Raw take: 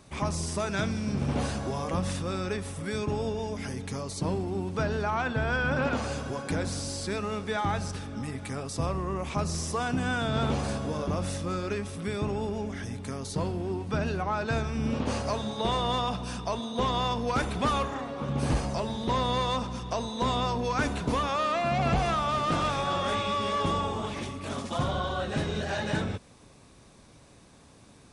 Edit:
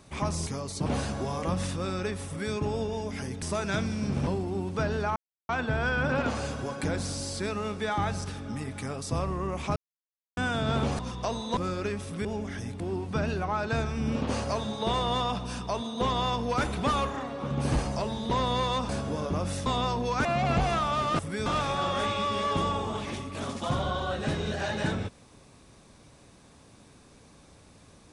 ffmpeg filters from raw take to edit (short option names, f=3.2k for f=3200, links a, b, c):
-filter_complex "[0:a]asplit=17[a][b][c][d][e][f][g][h][i][j][k][l][m][n][o][p][q];[a]atrim=end=0.472[r];[b]atrim=start=3.878:end=4.272[s];[c]atrim=start=1.318:end=3.882[t];[d]atrim=start=0.468:end=1.322[u];[e]atrim=start=4.268:end=5.16,asetpts=PTS-STARTPTS,afade=t=out:st=0.888:d=0.004:c=hsin,apad=pad_dur=0.33[v];[f]atrim=start=5.16:end=9.43,asetpts=PTS-STARTPTS,afade=t=in:d=0.004:c=hsin,afade=t=out:st=4.266:d=0.004:c=hsin[w];[g]atrim=start=9.43:end=10.04,asetpts=PTS-STARTPTS,volume=0[x];[h]atrim=start=10.04:end=10.662,asetpts=PTS-STARTPTS,afade=t=in:d=0.004:c=hsin[y];[i]atrim=start=19.668:end=20.252[z];[j]atrim=start=11.428:end=12.112[aa];[k]atrim=start=12.498:end=13.052[ab];[l]atrim=start=13.578:end=19.672[ac];[m]atrim=start=10.658:end=11.432[ad];[n]atrim=start=20.248:end=20.842[ae];[o]atrim=start=21.608:end=22.552[af];[p]atrim=start=2.728:end=3.002[ag];[q]atrim=start=22.548[ah];[r][s]acrossfade=d=0.004:c1=hsin:c2=hsin[ai];[ai][t]acrossfade=d=0.004:c1=hsin:c2=hsin[aj];[aj][u]acrossfade=d=0.004:c1=hsin:c2=hsin[ak];[v][w][x][y]concat=n=4:v=0:a=1[al];[ak][al]acrossfade=d=0.004:c1=hsin:c2=hsin[am];[am][z]acrossfade=d=0.004:c1=hsin:c2=hsin[an];[an][aa]acrossfade=d=0.004:c1=hsin:c2=hsin[ao];[ao][ab]acrossfade=d=0.004:c1=hsin:c2=hsin[ap];[ap][ac]acrossfade=d=0.004:c1=hsin:c2=hsin[aq];[aq][ad]acrossfade=d=0.004:c1=hsin:c2=hsin[ar];[ar][ae]acrossfade=d=0.004:c1=hsin:c2=hsin[as];[as][af]acrossfade=d=0.004:c1=hsin:c2=hsin[at];[at][ag]acrossfade=d=0.004:c1=hsin:c2=hsin[au];[au][ah]acrossfade=d=0.004:c1=hsin:c2=hsin"